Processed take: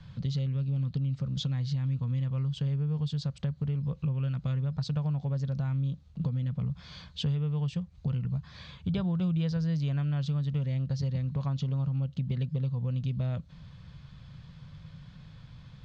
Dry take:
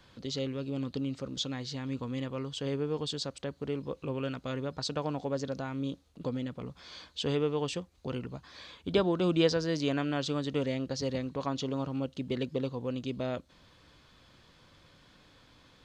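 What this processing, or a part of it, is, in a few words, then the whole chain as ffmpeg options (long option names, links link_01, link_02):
jukebox: -af "lowpass=5700,lowshelf=frequency=220:width_type=q:width=3:gain=12.5,acompressor=threshold=-28dB:ratio=5"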